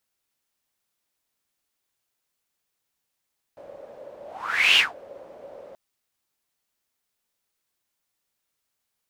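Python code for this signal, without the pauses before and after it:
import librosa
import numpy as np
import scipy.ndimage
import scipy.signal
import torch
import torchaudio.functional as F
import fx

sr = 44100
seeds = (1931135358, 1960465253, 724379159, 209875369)

y = fx.whoosh(sr, seeds[0], length_s=2.18, peak_s=1.2, rise_s=0.58, fall_s=0.19, ends_hz=560.0, peak_hz=2900.0, q=9.3, swell_db=27)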